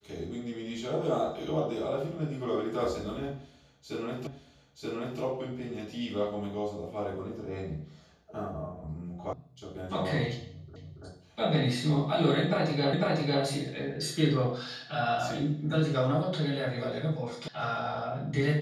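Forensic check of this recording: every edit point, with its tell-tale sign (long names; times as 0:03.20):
0:04.27: the same again, the last 0.93 s
0:09.33: cut off before it has died away
0:10.76: the same again, the last 0.28 s
0:12.93: the same again, the last 0.5 s
0:17.48: cut off before it has died away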